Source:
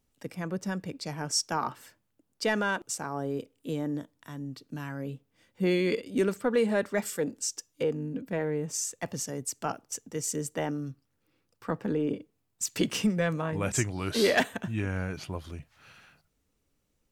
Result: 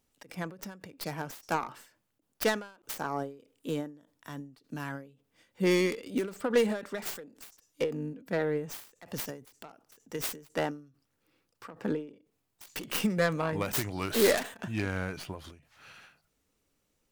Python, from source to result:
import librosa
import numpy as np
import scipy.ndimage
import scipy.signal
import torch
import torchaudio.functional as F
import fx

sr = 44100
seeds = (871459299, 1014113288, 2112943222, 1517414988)

y = fx.tracing_dist(x, sr, depth_ms=0.48)
y = fx.low_shelf(y, sr, hz=210.0, db=-7.5)
y = fx.end_taper(y, sr, db_per_s=130.0)
y = F.gain(torch.from_numpy(y), 2.5).numpy()